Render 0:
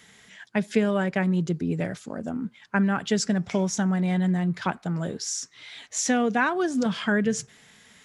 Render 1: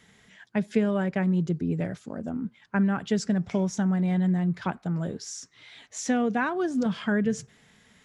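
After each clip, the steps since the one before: tilt EQ -1.5 dB/octave; trim -4 dB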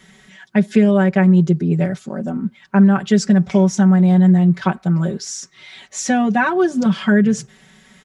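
comb 5.3 ms, depth 89%; trim +7 dB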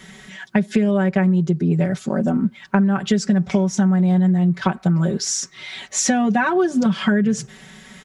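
compression 6:1, threshold -21 dBFS, peak gain reduction 13 dB; trim +6 dB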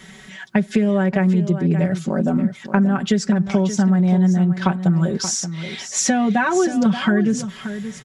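delay 579 ms -11 dB

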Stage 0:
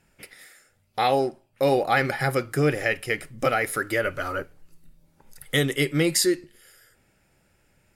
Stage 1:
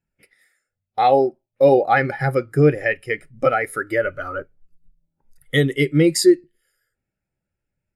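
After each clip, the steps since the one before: spectral contrast expander 1.5:1; trim +4 dB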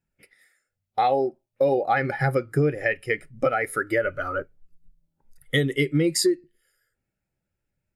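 compression 6:1, threshold -18 dBFS, peak gain reduction 10 dB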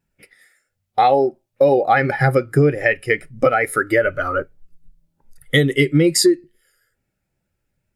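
wow and flutter 26 cents; trim +7 dB

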